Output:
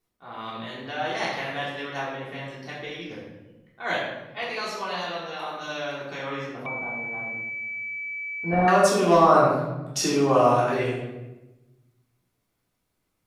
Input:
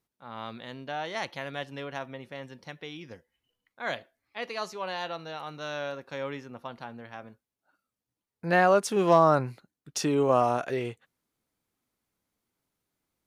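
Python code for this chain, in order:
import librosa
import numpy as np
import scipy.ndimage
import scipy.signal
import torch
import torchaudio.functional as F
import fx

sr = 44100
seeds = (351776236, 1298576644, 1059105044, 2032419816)

y = fx.hpss(x, sr, part='harmonic', gain_db=-6)
y = fx.room_shoebox(y, sr, seeds[0], volume_m3=510.0, walls='mixed', distance_m=3.4)
y = fx.pwm(y, sr, carrier_hz=2300.0, at=(6.66, 8.68))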